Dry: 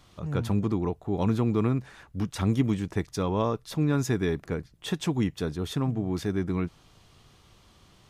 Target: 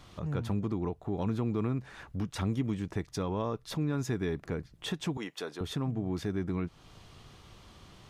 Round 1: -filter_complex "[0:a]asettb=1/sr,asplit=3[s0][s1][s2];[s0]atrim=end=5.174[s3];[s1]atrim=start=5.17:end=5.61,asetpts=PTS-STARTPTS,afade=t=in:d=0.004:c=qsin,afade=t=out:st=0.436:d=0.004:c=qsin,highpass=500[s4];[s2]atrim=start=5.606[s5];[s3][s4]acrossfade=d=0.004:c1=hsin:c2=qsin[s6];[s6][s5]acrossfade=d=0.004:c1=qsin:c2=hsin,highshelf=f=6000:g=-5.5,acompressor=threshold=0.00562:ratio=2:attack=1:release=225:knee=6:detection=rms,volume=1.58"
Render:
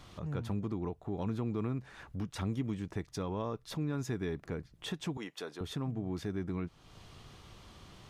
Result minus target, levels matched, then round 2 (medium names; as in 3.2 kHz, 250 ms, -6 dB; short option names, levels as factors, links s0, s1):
compression: peak gain reduction +3.5 dB
-filter_complex "[0:a]asettb=1/sr,asplit=3[s0][s1][s2];[s0]atrim=end=5.174[s3];[s1]atrim=start=5.17:end=5.61,asetpts=PTS-STARTPTS,afade=t=in:d=0.004:c=qsin,afade=t=out:st=0.436:d=0.004:c=qsin,highpass=500[s4];[s2]atrim=start=5.606[s5];[s3][s4]acrossfade=d=0.004:c1=hsin:c2=qsin[s6];[s6][s5]acrossfade=d=0.004:c1=qsin:c2=hsin,highshelf=f=6000:g=-5.5,acompressor=threshold=0.0133:ratio=2:attack=1:release=225:knee=6:detection=rms,volume=1.58"